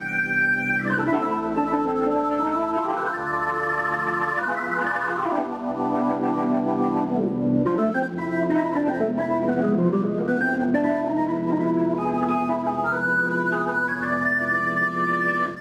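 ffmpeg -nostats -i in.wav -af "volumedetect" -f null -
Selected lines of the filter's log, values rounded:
mean_volume: -22.9 dB
max_volume: -9.6 dB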